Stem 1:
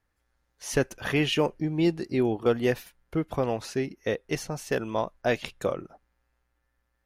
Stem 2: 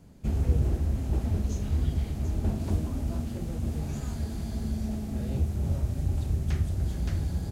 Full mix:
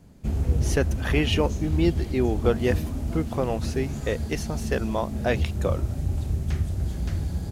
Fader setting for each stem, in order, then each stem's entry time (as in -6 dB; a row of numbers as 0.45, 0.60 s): +0.5, +1.5 dB; 0.00, 0.00 s